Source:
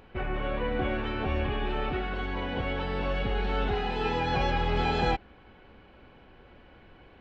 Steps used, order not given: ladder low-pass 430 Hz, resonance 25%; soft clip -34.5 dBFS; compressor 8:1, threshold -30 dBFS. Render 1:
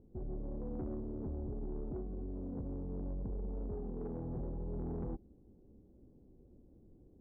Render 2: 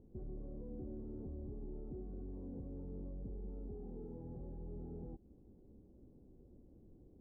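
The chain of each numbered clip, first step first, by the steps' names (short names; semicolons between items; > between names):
ladder low-pass > compressor > soft clip; compressor > soft clip > ladder low-pass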